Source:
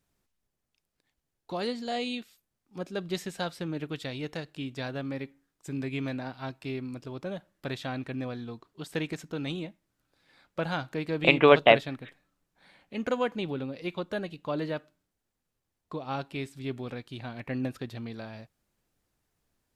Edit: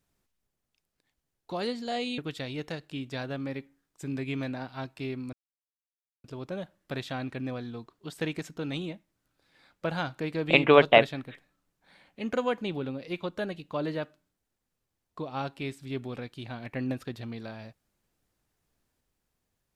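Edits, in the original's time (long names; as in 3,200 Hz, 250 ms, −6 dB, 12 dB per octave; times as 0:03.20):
0:02.18–0:03.83: remove
0:06.98: splice in silence 0.91 s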